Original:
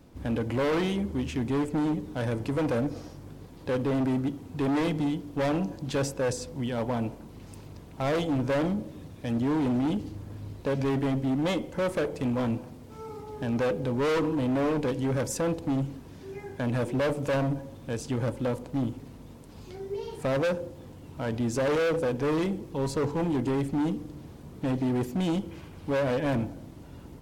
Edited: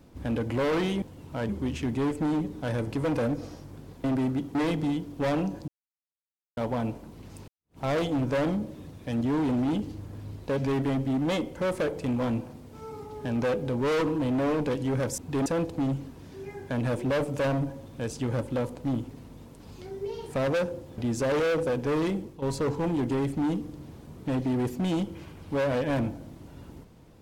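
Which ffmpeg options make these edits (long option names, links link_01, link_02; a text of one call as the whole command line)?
ffmpeg -i in.wav -filter_complex "[0:a]asplit=12[link_01][link_02][link_03][link_04][link_05][link_06][link_07][link_08][link_09][link_10][link_11][link_12];[link_01]atrim=end=1.022[link_13];[link_02]atrim=start=20.868:end=21.342[link_14];[link_03]atrim=start=1.018:end=3.572[link_15];[link_04]atrim=start=3.928:end=4.442[link_16];[link_05]atrim=start=4.718:end=5.85,asetpts=PTS-STARTPTS,afade=type=out:start_time=1.128:duration=0.004:curve=hsin[link_17];[link_06]atrim=start=5.85:end=6.74,asetpts=PTS-STARTPTS,volume=0[link_18];[link_07]atrim=start=6.74:end=7.65,asetpts=PTS-STARTPTS,afade=type=in:duration=0.004:curve=hsin,afade=type=out:start_time=0.906:duration=0.004:curve=hsin[link_19];[link_08]atrim=start=7.65:end=15.352,asetpts=PTS-STARTPTS,afade=type=in:duration=0.3:curve=exp[link_20];[link_09]atrim=start=4.438:end=4.722[link_21];[link_10]atrim=start=15.348:end=20.872[link_22];[link_11]atrim=start=21.338:end=22.78,asetpts=PTS-STARTPTS,afade=type=out:start_time=1.152:duration=0.29:curve=qsin:silence=0.266073[link_23];[link_12]atrim=start=22.78,asetpts=PTS-STARTPTS,afade=type=in:duration=0.004:curve=hsin:silence=0.266073[link_24];[link_13][link_14]acrossfade=duration=0.004:curve1=hsin:curve2=hsin[link_25];[link_25][link_15]acrossfade=duration=0.004:curve1=hsin:curve2=hsin[link_26];[link_26][link_16]acrossfade=duration=0.004:curve1=hsin:curve2=hsin[link_27];[link_17][link_18][link_19][link_20]concat=n=4:v=0:a=1[link_28];[link_27][link_28]acrossfade=duration=0.004:curve1=hsin:curve2=hsin[link_29];[link_29][link_21]acrossfade=duration=0.004:curve1=hsin:curve2=hsin[link_30];[link_30][link_22]acrossfade=duration=0.004:curve1=hsin:curve2=hsin[link_31];[link_23][link_24]concat=n=2:v=0:a=1[link_32];[link_31][link_32]acrossfade=duration=0.004:curve1=hsin:curve2=hsin" out.wav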